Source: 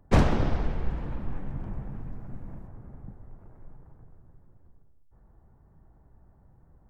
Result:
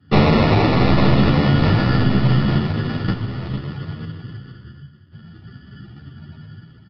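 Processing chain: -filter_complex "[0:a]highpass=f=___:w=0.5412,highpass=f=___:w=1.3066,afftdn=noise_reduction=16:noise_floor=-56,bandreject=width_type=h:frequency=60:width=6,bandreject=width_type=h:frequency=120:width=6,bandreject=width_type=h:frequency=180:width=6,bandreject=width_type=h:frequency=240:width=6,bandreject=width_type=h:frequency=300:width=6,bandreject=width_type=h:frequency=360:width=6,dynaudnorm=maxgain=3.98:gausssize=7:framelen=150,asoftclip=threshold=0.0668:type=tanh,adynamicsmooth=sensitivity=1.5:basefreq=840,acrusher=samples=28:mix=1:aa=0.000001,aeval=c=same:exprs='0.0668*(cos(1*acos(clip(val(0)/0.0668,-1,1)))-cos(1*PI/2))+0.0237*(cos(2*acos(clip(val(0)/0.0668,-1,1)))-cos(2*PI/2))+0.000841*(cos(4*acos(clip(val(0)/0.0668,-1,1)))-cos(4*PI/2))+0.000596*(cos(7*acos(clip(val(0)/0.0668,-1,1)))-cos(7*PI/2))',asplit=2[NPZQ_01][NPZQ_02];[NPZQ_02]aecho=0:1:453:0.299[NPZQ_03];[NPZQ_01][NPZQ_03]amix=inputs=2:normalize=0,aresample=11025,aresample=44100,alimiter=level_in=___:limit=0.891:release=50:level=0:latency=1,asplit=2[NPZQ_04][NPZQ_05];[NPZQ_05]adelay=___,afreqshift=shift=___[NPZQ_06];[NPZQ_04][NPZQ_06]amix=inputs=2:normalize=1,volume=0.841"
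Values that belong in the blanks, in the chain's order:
97, 97, 11.2, 11.6, 0.83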